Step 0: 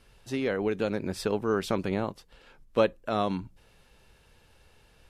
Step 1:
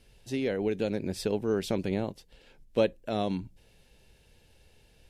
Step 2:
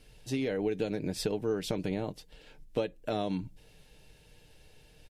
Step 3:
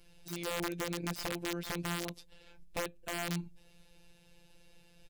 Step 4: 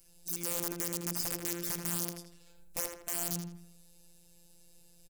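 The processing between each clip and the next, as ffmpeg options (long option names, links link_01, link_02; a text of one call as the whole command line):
ffmpeg -i in.wav -af "equalizer=frequency=1200:width_type=o:width=0.83:gain=-12.5" out.wav
ffmpeg -i in.wav -af "acompressor=threshold=-30dB:ratio=6,aecho=1:1:6.6:0.39,volume=2dB" out.wav
ffmpeg -i in.wav -af "afftfilt=real='hypot(re,im)*cos(PI*b)':imag='0':win_size=1024:overlap=0.75,aeval=exprs='(mod(22.4*val(0)+1,2)-1)/22.4':channel_layout=same" out.wav
ffmpeg -i in.wav -filter_complex "[0:a]aexciter=amount=5.1:drive=6.7:freq=5200,asplit=2[link_01][link_02];[link_02]adelay=81,lowpass=frequency=3300:poles=1,volume=-4dB,asplit=2[link_03][link_04];[link_04]adelay=81,lowpass=frequency=3300:poles=1,volume=0.44,asplit=2[link_05][link_06];[link_06]adelay=81,lowpass=frequency=3300:poles=1,volume=0.44,asplit=2[link_07][link_08];[link_08]adelay=81,lowpass=frequency=3300:poles=1,volume=0.44,asplit=2[link_09][link_10];[link_10]adelay=81,lowpass=frequency=3300:poles=1,volume=0.44,asplit=2[link_11][link_12];[link_12]adelay=81,lowpass=frequency=3300:poles=1,volume=0.44[link_13];[link_03][link_05][link_07][link_09][link_11][link_13]amix=inputs=6:normalize=0[link_14];[link_01][link_14]amix=inputs=2:normalize=0,volume=-6.5dB" out.wav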